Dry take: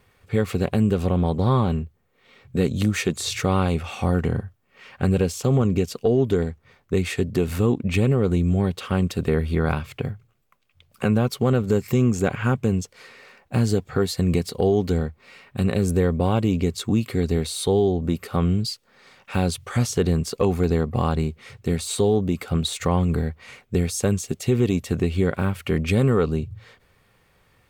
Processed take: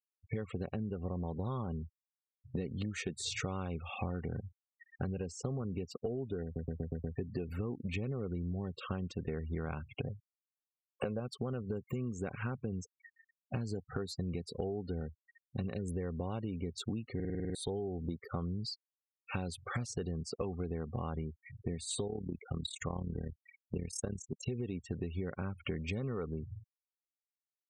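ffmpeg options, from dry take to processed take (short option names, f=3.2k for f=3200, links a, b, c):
-filter_complex "[0:a]asettb=1/sr,asplit=3[a][b][c];[a]atrim=end=10.074[d];[b]atrim=start=10.07:end=11.2,asetpts=PTS-STARTPTS,afade=t=in:d=0.004:c=qsin,afade=t=out:st=1.126:d=0.004:c=qsin,equalizer=f=530:t=o:w=0.77:g=11[e];[c]atrim=start=11.196[f];[d][e]acrossfade=d=0.004:c1=hsin:c2=qsin[g];[g][f]acrossfade=d=0.004:c1=qsin:c2=hsin,asplit=3[h][i][j];[h]afade=t=out:st=22.06:d=0.02[k];[i]tremolo=f=36:d=0.824,afade=t=in:st=22.06:d=0.02,afade=t=out:st=24.46:d=0.02[l];[j]afade=t=in:st=24.46:d=0.02[m];[k][l][m]amix=inputs=3:normalize=0,asplit=15[n][o][p][q][r][s][t][u][v][w][x][y][z][aa][ab];[n]atrim=end=6.562[ac];[o]atrim=start=6.438:end=6.562[ad];[p]atrim=start=6.438:end=6.562[ae];[q]atrim=start=6.438:end=6.562[af];[r]atrim=start=6.438:end=6.562[ag];[s]atrim=start=6.438:end=6.562[ah];[t]atrim=start=7.158:end=17.202[ai];[u]atrim=start=17.148:end=17.202[aj];[v]atrim=start=17.148:end=17.202[ak];[w]atrim=start=17.148:end=17.202[al];[x]atrim=start=17.148:end=17.202[am];[y]atrim=start=17.148:end=17.202[an];[z]atrim=start=17.148:end=17.202[ao];[aa]atrim=start=17.148:end=17.202[ap];[ab]atrim=start=17.548[aq];[ac][ad]acrossfade=d=0.004:c1=hsin:c2=hsin[ar];[ar][ae]acrossfade=d=0.004:c1=hsin:c2=hsin[as];[as][af]acrossfade=d=0.004:c1=hsin:c2=hsin[at];[at][ag]acrossfade=d=0.004:c1=hsin:c2=hsin[au];[au][ah]acrossfade=d=0.004:c1=hsin:c2=hsin[av];[av][ai]acrossfade=d=0.004:c1=hsin:c2=hsin[aw];[aw][aj]acrossfade=d=0.004:c1=hsin:c2=hsin[ax];[ax][ak]acrossfade=d=0.004:c1=hsin:c2=hsin[ay];[ay][al]acrossfade=d=0.004:c1=hsin:c2=hsin[az];[az][am]acrossfade=d=0.004:c1=hsin:c2=hsin[ba];[ba][an]acrossfade=d=0.004:c1=hsin:c2=hsin[bb];[bb][ao]acrossfade=d=0.004:c1=hsin:c2=hsin[bc];[bc][ap]acrossfade=d=0.004:c1=hsin:c2=hsin[bd];[bd][aq]acrossfade=d=0.004:c1=hsin:c2=hsin,afftfilt=real='re*gte(hypot(re,im),0.0282)':imag='im*gte(hypot(re,im),0.0282)':win_size=1024:overlap=0.75,acompressor=threshold=-30dB:ratio=12,volume=-4dB"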